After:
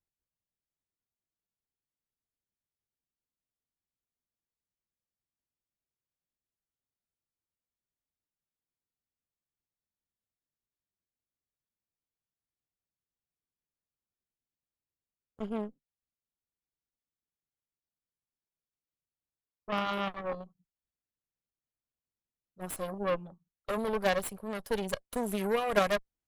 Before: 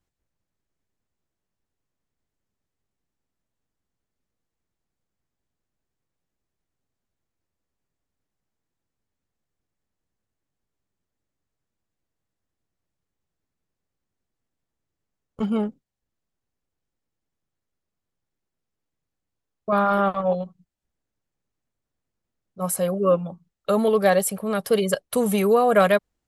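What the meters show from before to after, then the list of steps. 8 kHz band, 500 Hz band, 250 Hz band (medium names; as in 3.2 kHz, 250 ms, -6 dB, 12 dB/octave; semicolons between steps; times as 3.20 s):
-13.0 dB, -12.0 dB, -12.0 dB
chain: short-mantissa float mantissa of 8-bit; Chebyshev shaper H 3 -12 dB, 5 -36 dB, 8 -24 dB, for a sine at -5.5 dBFS; trim -5.5 dB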